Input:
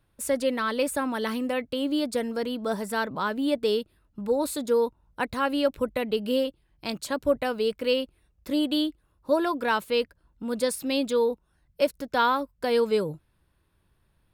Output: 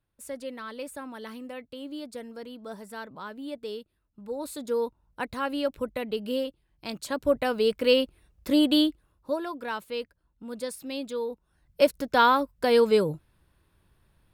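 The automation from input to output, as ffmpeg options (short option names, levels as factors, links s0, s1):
-af "volume=5.62,afade=t=in:st=4.21:d=0.62:silence=0.421697,afade=t=in:st=6.89:d=1.11:silence=0.398107,afade=t=out:st=8.8:d=0.59:silence=0.251189,afade=t=in:st=11.28:d=0.53:silence=0.281838"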